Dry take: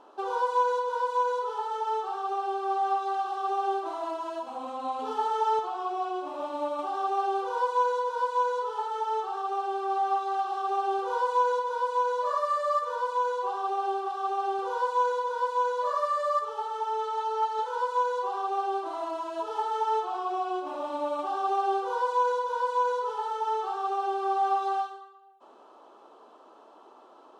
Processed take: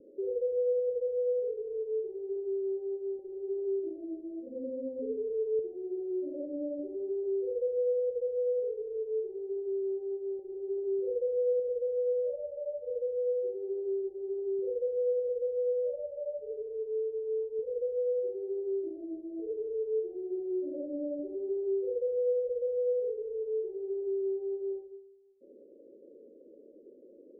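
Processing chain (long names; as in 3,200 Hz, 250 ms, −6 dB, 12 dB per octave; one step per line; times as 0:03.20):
Chebyshev low-pass filter 560 Hz, order 8
in parallel at −1.5 dB: brickwall limiter −36 dBFS, peak gain reduction 11.5 dB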